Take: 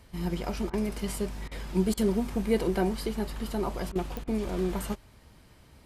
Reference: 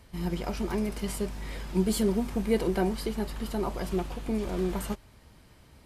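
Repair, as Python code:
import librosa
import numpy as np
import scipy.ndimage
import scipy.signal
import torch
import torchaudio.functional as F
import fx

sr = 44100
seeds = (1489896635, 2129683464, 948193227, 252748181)

y = fx.fix_declick_ar(x, sr, threshold=10.0)
y = fx.fix_interpolate(y, sr, at_s=(0.7, 1.48, 1.94, 3.92, 4.24), length_ms=33.0)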